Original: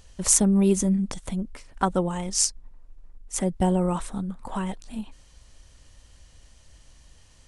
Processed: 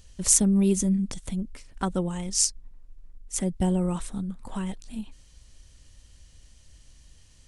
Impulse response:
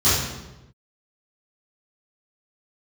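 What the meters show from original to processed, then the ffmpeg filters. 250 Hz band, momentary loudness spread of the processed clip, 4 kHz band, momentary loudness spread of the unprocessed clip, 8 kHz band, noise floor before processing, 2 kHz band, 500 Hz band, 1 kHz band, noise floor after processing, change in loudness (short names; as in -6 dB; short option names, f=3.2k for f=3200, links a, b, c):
-1.0 dB, 17 LU, -0.5 dB, 16 LU, -0.5 dB, -54 dBFS, -4.5 dB, -4.5 dB, -7.5 dB, -55 dBFS, -1.0 dB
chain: -af "equalizer=f=870:w=0.6:g=-8"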